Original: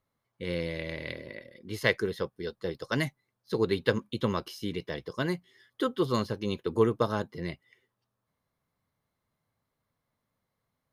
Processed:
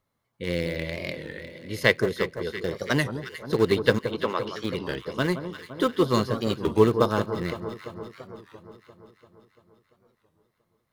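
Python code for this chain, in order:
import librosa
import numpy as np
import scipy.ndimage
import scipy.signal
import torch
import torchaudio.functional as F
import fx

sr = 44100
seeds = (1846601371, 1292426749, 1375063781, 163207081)

p1 = np.where(np.abs(x) >= 10.0 ** (-24.5 / 20.0), x, 0.0)
p2 = x + F.gain(torch.from_numpy(p1), -11.0).numpy()
p3 = fx.bandpass_edges(p2, sr, low_hz=420.0, high_hz=fx.line((3.98, 2900.0), (4.64, 4300.0)), at=(3.98, 4.64), fade=0.02)
p4 = fx.echo_alternate(p3, sr, ms=171, hz=1300.0, feedback_pct=78, wet_db=-9.5)
p5 = fx.record_warp(p4, sr, rpm=33.33, depth_cents=160.0)
y = F.gain(torch.from_numpy(p5), 3.5).numpy()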